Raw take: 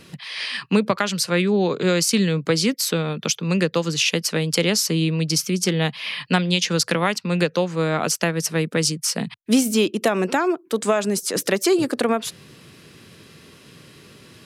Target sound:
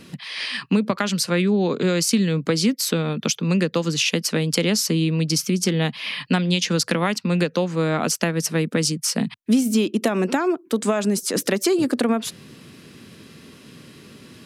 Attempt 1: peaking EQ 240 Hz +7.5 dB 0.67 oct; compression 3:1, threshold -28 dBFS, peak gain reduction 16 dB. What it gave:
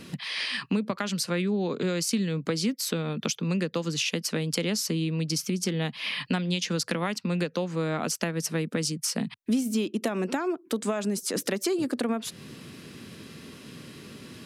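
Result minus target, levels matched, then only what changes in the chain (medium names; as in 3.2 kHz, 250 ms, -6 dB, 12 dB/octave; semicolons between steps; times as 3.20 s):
compression: peak gain reduction +7.5 dB
change: compression 3:1, threshold -16.5 dBFS, peak gain reduction 8 dB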